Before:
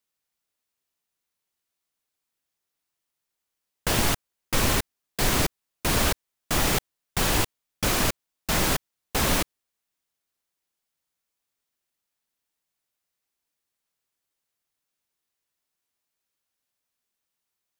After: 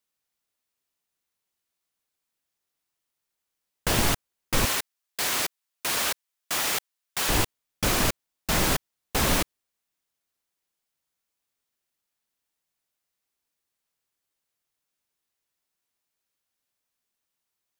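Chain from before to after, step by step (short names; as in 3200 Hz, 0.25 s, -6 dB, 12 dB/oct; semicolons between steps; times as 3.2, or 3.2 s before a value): 4.65–7.29 HPF 1100 Hz 6 dB/oct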